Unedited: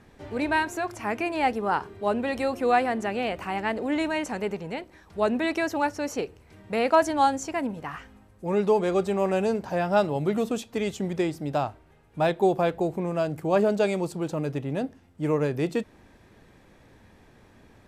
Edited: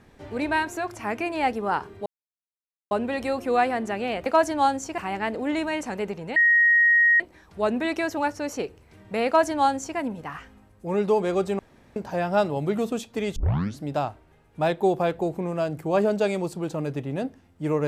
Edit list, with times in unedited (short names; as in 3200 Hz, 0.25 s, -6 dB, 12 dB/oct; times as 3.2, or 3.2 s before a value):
2.06 insert silence 0.85 s
4.79 add tone 1880 Hz -14.5 dBFS 0.84 s
6.85–7.57 copy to 3.41
9.18–9.55 room tone
10.95 tape start 0.48 s